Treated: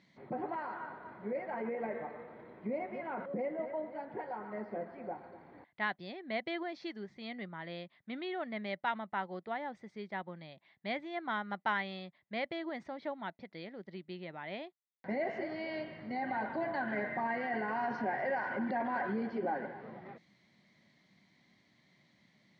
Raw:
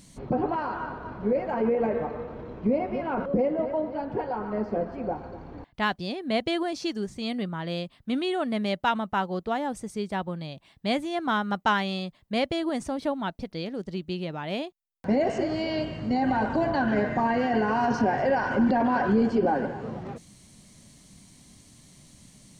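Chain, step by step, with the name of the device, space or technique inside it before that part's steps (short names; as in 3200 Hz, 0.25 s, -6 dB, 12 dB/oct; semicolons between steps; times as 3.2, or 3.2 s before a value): kitchen radio (speaker cabinet 220–3900 Hz, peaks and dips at 270 Hz -6 dB, 460 Hz -5 dB, 1200 Hz -3 dB, 2000 Hz +10 dB, 2800 Hz -7 dB); gain -9 dB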